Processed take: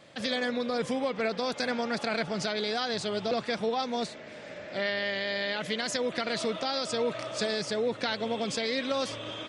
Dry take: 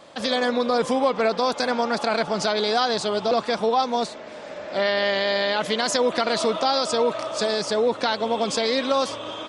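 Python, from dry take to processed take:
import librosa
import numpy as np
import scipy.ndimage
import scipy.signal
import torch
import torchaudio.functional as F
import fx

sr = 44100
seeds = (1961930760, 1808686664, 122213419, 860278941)

y = fx.graphic_eq(x, sr, hz=(125, 1000, 2000), db=(9, -7, 6))
y = fx.rider(y, sr, range_db=3, speed_s=0.5)
y = y * librosa.db_to_amplitude(-7.5)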